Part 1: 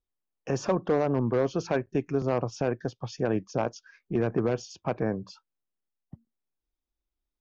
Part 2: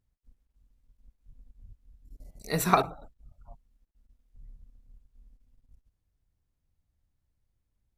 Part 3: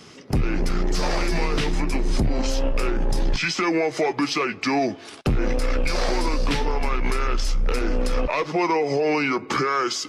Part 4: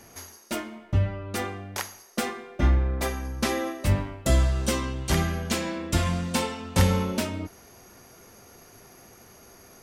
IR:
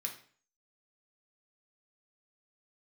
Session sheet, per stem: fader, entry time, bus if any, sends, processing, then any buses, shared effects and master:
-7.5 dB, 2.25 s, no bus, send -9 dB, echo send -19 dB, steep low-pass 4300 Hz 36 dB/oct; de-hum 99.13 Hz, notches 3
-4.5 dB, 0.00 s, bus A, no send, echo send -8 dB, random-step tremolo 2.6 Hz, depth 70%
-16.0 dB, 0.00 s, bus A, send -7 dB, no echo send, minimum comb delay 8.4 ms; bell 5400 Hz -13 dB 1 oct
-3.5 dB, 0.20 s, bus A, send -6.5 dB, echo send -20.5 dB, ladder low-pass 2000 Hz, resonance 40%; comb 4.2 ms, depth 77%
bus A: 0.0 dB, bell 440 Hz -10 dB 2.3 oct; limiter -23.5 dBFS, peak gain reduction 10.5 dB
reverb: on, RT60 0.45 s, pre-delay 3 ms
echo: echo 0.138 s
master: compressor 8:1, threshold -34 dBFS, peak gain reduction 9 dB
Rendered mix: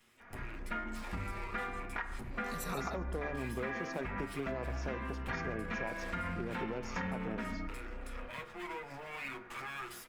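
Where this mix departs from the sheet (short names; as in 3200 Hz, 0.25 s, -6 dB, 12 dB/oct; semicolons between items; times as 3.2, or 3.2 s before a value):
stem 1: missing steep low-pass 4300 Hz 36 dB/oct; stem 4 -3.5 dB -> +4.5 dB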